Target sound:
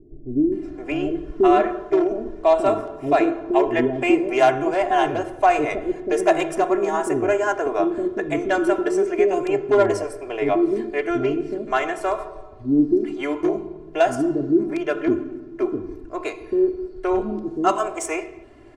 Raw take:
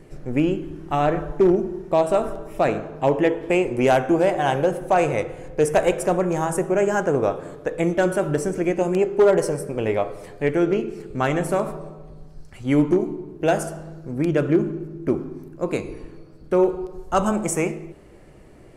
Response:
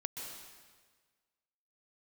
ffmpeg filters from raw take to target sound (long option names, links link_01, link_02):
-filter_complex "[0:a]lowshelf=frequency=83:gain=-9,aecho=1:1:2.9:0.95,acrossover=split=400[link_01][link_02];[link_02]adelay=520[link_03];[link_01][link_03]amix=inputs=2:normalize=0,adynamicsmooth=sensitivity=1:basefreq=6100"